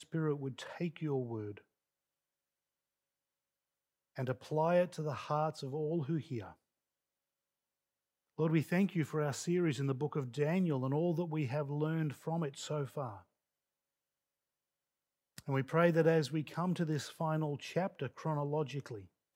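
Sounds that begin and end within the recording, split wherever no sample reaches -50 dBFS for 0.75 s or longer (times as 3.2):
4.16–6.52
8.38–13.2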